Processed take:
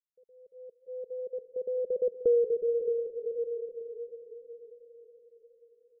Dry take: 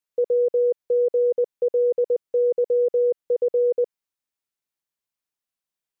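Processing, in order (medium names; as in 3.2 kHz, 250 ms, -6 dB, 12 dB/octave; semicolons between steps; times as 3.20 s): Doppler pass-by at 2.21 s, 14 m/s, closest 2.5 m; gate -38 dBFS, range -17 dB; steep low-pass 560 Hz 36 dB/octave; bass shelf 300 Hz +7 dB; comb 4.6 ms, depth 41%; echo that smears into a reverb 484 ms, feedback 49%, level -12.5 dB; in parallel at -2 dB: compression, threshold -29 dBFS, peak gain reduction 12 dB; on the sum: modulated delay 182 ms, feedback 77%, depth 131 cents, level -20 dB; trim -6.5 dB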